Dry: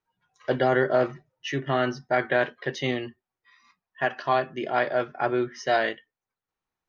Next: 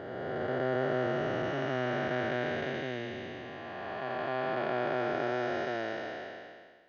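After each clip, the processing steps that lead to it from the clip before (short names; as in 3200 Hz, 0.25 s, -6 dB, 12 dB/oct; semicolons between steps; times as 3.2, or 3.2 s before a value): time blur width 1.03 s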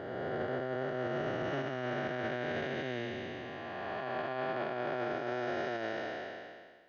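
limiter -26.5 dBFS, peak gain reduction 8 dB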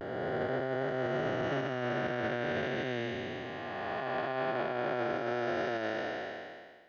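vibrato 0.32 Hz 36 cents; gain +2.5 dB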